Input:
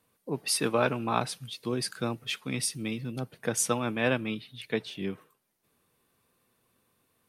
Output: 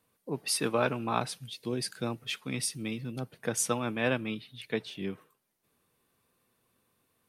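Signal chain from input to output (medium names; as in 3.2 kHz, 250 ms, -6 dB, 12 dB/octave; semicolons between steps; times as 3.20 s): 1.39–2.07 s: peaking EQ 1.2 kHz -8 dB 0.48 oct; trim -2 dB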